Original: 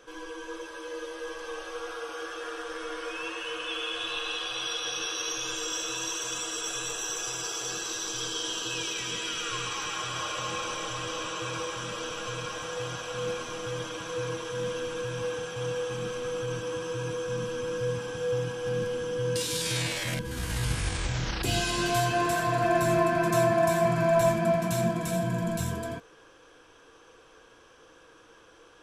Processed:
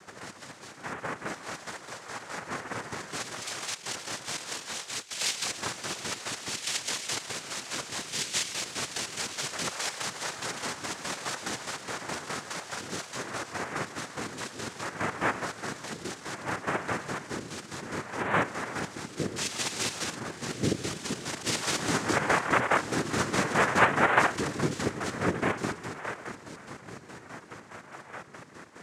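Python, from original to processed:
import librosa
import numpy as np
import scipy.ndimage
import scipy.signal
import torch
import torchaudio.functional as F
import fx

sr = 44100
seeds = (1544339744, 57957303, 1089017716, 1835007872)

y = fx.spec_ripple(x, sr, per_octave=1.3, drift_hz=0.64, depth_db=22)
y = fx.echo_diffused(y, sr, ms=1690, feedback_pct=50, wet_db=-15.5)
y = fx.chopper(y, sr, hz=4.8, depth_pct=60, duty_pct=45)
y = fx.over_compress(y, sr, threshold_db=-35.0, ratio=-0.5, at=(3.3, 5.12), fade=0.02)
y = fx.noise_vocoder(y, sr, seeds[0], bands=3)
y = y * 10.0 ** (-3.5 / 20.0)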